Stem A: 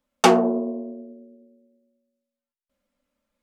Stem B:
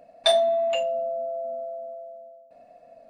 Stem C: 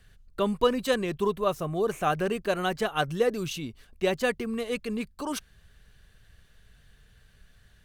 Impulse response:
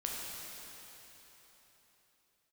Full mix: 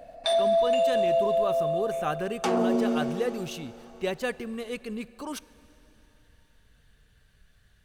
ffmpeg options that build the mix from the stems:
-filter_complex "[0:a]adelay=2200,volume=1.26,asplit=2[s0][s1];[s1]volume=0.126[s2];[1:a]volume=1.41,asplit=2[s3][s4];[s4]volume=0.282[s5];[2:a]volume=0.596,asplit=3[s6][s7][s8];[s7]volume=0.106[s9];[s8]apad=whole_len=136394[s10];[s3][s10]sidechaincompress=threshold=0.0158:ratio=8:attack=16:release=101[s11];[3:a]atrim=start_sample=2205[s12];[s2][s5][s9]amix=inputs=3:normalize=0[s13];[s13][s12]afir=irnorm=-1:irlink=0[s14];[s0][s11][s6][s14]amix=inputs=4:normalize=0,alimiter=limit=0.141:level=0:latency=1:release=24"

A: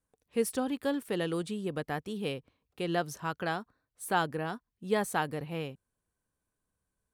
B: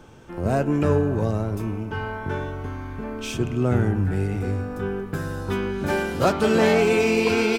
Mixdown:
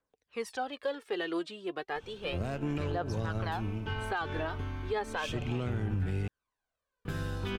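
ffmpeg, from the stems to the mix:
-filter_complex "[0:a]acrossover=split=370 5700:gain=0.178 1 0.0708[s0][s1][s2];[s0][s1][s2]amix=inputs=3:normalize=0,aphaser=in_gain=1:out_gain=1:delay=3.3:decay=0.63:speed=0.33:type=triangular,volume=1,asplit=2[s3][s4];[1:a]equalizer=f=3200:t=o:w=1.2:g=11,aeval=exprs='0.631*(cos(1*acos(clip(val(0)/0.631,-1,1)))-cos(1*PI/2))+0.158*(cos(3*acos(clip(val(0)/0.631,-1,1)))-cos(3*PI/2))+0.00447*(cos(6*acos(clip(val(0)/0.631,-1,1)))-cos(6*PI/2))':c=same,lowshelf=f=98:g=10,adelay=1950,volume=1.33,asplit=3[s5][s6][s7];[s5]atrim=end=6.28,asetpts=PTS-STARTPTS,afade=t=out:st=6.276:d=0.004:c=hsin[s8];[s6]atrim=start=6.28:end=7.05,asetpts=PTS-STARTPTS,volume=0[s9];[s7]atrim=start=7.05,asetpts=PTS-STARTPTS,afade=t=in:d=0.004:c=hsin[s10];[s8][s9][s10]concat=n=3:v=0:a=1[s11];[s4]apad=whole_len=420312[s12];[s11][s12]sidechaincompress=threshold=0.0282:ratio=8:attack=40:release=253[s13];[s3][s13]amix=inputs=2:normalize=0,asoftclip=type=tanh:threshold=0.224,alimiter=limit=0.0631:level=0:latency=1:release=98"

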